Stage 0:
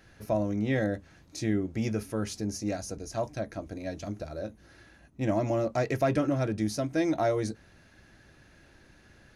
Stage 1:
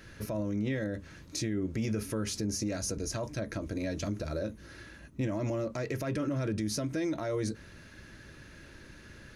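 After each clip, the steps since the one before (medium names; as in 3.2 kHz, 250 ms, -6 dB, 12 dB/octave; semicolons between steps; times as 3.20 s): compression, threshold -30 dBFS, peak gain reduction 9 dB; peak limiter -30.5 dBFS, peak gain reduction 9 dB; peaking EQ 750 Hz -12.5 dB 0.29 oct; trim +6.5 dB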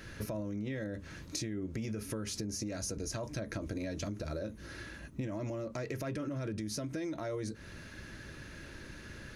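compression, threshold -38 dBFS, peak gain reduction 10 dB; trim +3 dB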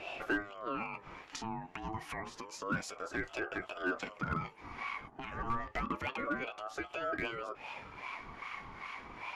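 LFO band-pass sine 2.5 Hz 610–1900 Hz; hard clipper -40 dBFS, distortion -17 dB; ring modulator with a swept carrier 760 Hz, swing 30%, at 0.29 Hz; trim +15 dB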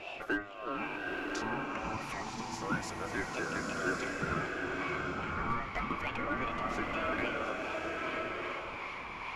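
swelling reverb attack 1110 ms, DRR -1.5 dB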